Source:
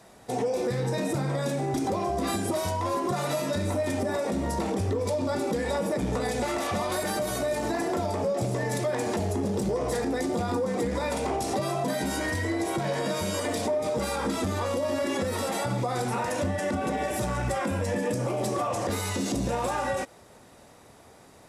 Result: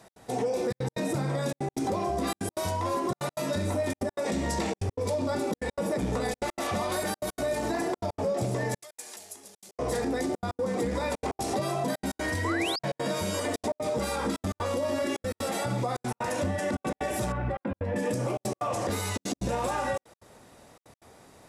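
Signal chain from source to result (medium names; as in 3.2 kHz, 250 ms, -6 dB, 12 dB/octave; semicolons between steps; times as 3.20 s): 4.26–4.82 s: time-frequency box 1.6–8.6 kHz +6 dB; 8.82–9.79 s: differentiator; 15.02–15.75 s: band-stop 980 Hz, Q 7; trance gate "x.xxxxxxx." 187 bpm -60 dB; 12.44–12.79 s: painted sound rise 900–5200 Hz -32 dBFS; 17.32–17.96 s: distance through air 480 m; trim -1 dB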